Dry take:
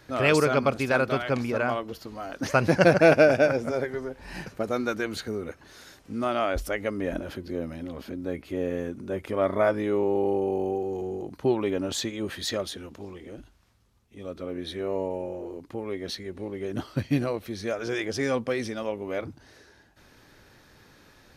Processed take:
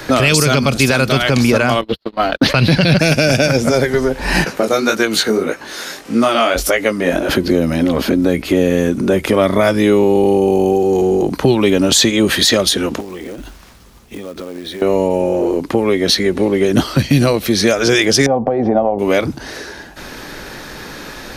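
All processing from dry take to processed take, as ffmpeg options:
-filter_complex "[0:a]asettb=1/sr,asplit=3[s0][s1][s2];[s0]atrim=end=1.814[s3];[s1]atrim=start=1.81:end=2.99,asetpts=PTS-STARTPTS,afade=t=in:d=0.004:c=qsin,afade=t=out:st=1.176:d=0.004:c=qsin,highshelf=f=5000:t=q:w=3:g=-8.5,agate=range=0.00178:threshold=0.0141:ratio=16:release=100:detection=peak,acompressor=mode=upward:threshold=0.0126:ratio=2.5:attack=3.2:release=140:knee=2.83:detection=peak[s4];[s2]atrim=start=2.986[s5];[s3][s4]acrossfade=d=0.004:c1=hsin:c2=qsin[s6];[s6][s5]acrossfade=d=0.004:c1=qsin:c2=hsin,asettb=1/sr,asplit=3[s7][s8][s9];[s7]atrim=end=4.444[s10];[s8]atrim=start=4.44:end=7.29,asetpts=PTS-STARTPTS,afade=t=in:d=0.004:c=qsin,afade=t=out:st=2.846:d=0.004:c=qsin,highpass=f=270:p=1,flanger=delay=17:depth=5.9:speed=1.7[s11];[s9]atrim=start=7.286[s12];[s10][s11]acrossfade=d=0.004:c1=hsin:c2=qsin[s13];[s13][s12]acrossfade=d=0.004:c1=qsin:c2=hsin,asettb=1/sr,asplit=3[s14][s15][s16];[s14]atrim=end=13.004[s17];[s15]atrim=start=13:end=14.82,asetpts=PTS-STARTPTS,afade=t=in:d=0.004:c=qsin,afade=t=out:st=1.816:d=0.004:c=qsin,acompressor=threshold=0.00398:ratio=12:attack=3.2:release=140:knee=1:detection=peak,acrusher=bits=4:mode=log:mix=0:aa=0.000001[s18];[s16]atrim=start=14.816[s19];[s17][s18]acrossfade=d=0.004:c1=hsin:c2=qsin[s20];[s20][s19]acrossfade=d=0.004:c1=qsin:c2=hsin,asettb=1/sr,asplit=3[s21][s22][s23];[s21]atrim=end=18.264[s24];[s22]atrim=start=18.26:end=18.99,asetpts=PTS-STARTPTS,afade=t=in:d=0.004:c=qsin,afade=t=out:st=0.726:d=0.004:c=qsin,acompressor=threshold=0.0316:ratio=6:attack=3.2:release=140:knee=1:detection=peak,lowpass=f=740:t=q:w=7.3[s25];[s23]atrim=start=18.986[s26];[s24][s25]acrossfade=d=0.004:c1=hsin:c2=qsin[s27];[s27][s26]acrossfade=d=0.004:c1=qsin:c2=hsin,equalizer=f=94:w=1.9:g=-11.5,acrossover=split=170|3000[s28][s29][s30];[s29]acompressor=threshold=0.0141:ratio=6[s31];[s28][s31][s30]amix=inputs=3:normalize=0,alimiter=level_in=20:limit=0.891:release=50:level=0:latency=1,volume=0.891"

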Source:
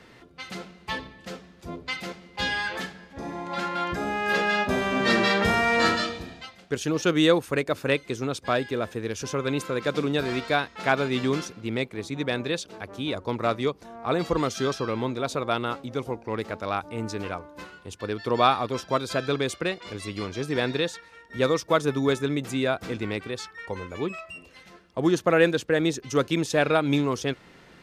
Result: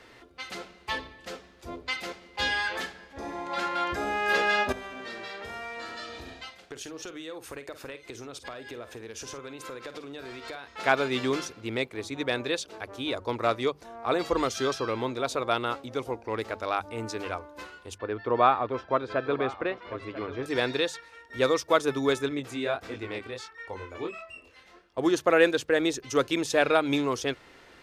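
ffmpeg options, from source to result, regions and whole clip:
-filter_complex "[0:a]asettb=1/sr,asplit=3[s0][s1][s2];[s0]atrim=end=4.724[s3];[s1]atrim=start=4.72:end=10.68,asetpts=PTS-STARTPTS,afade=t=in:d=0.004:c=qsin,afade=t=out:st=5.956:d=0.004:c=qsin,acompressor=threshold=0.02:ratio=20:attack=3.2:release=140:knee=1:detection=peak,asplit=2[s4][s5];[s5]adelay=50,volume=0.251[s6];[s4][s6]amix=inputs=2:normalize=0,atrim=end_sample=262836[s7];[s2]atrim=start=10.676[s8];[s3][s7]acrossfade=d=0.004:c1=hsin:c2=qsin[s9];[s9][s8]acrossfade=d=0.004:c1=qsin:c2=hsin,asettb=1/sr,asplit=3[s10][s11][s12];[s10]atrim=end=17.984[s13];[s11]atrim=start=17.98:end=20.46,asetpts=PTS-STARTPTS,afade=t=in:d=0.004:c=qsin,afade=t=out:st=2.476:d=0.004:c=qsin,lowpass=1900,aecho=1:1:992:0.178,atrim=end_sample=109368[s14];[s12]atrim=start=20.456[s15];[s13][s14]acrossfade=d=0.004:c1=hsin:c2=qsin[s16];[s16][s15]acrossfade=d=0.004:c1=qsin:c2=hsin,asettb=1/sr,asplit=3[s17][s18][s19];[s17]atrim=end=22.294[s20];[s18]atrim=start=22.29:end=24.98,asetpts=PTS-STARTPTS,afade=t=in:d=0.004:c=qsin,afade=t=out:st=2.686:d=0.004:c=qsin,highshelf=f=5200:g=-5.5,flanger=delay=19.5:depth=6.4:speed=1.5[s21];[s19]atrim=start=24.976[s22];[s20][s21]acrossfade=d=0.004:c1=hsin:c2=qsin[s23];[s23][s22]acrossfade=d=0.004:c1=qsin:c2=hsin,equalizer=f=170:w=1.7:g=-12.5,bandreject=f=50:t=h:w=6,bandreject=f=100:t=h:w=6,bandreject=f=150:t=h:w=6,bandreject=f=200:t=h:w=6"

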